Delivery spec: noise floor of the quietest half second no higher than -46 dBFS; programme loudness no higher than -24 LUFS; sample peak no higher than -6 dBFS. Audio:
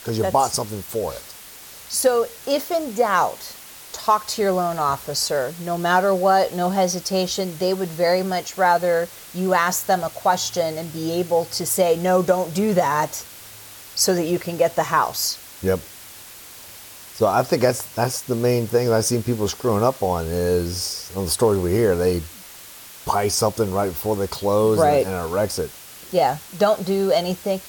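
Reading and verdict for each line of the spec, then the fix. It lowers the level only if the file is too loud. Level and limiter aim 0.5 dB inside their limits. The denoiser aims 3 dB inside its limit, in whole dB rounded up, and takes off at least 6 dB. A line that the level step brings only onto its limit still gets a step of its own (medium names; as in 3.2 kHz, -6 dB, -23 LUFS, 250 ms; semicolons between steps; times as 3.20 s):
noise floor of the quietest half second -41 dBFS: fail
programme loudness -21.0 LUFS: fail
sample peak -5.0 dBFS: fail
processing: noise reduction 6 dB, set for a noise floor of -41 dBFS; trim -3.5 dB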